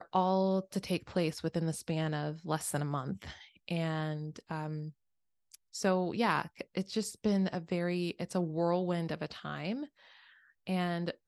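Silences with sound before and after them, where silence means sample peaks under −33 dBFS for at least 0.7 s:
0:04.80–0:05.75
0:09.83–0:10.67

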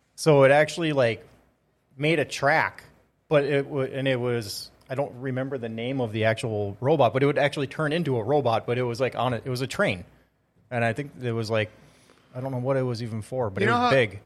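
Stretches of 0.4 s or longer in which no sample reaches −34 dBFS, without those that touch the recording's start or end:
0:01.16–0:02.00
0:02.79–0:03.31
0:10.02–0:10.71
0:11.67–0:12.36

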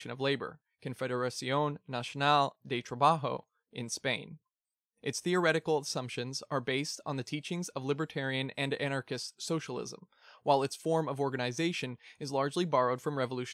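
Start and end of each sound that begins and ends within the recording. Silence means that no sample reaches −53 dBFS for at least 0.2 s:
0:00.82–0:03.41
0:03.73–0:04.36

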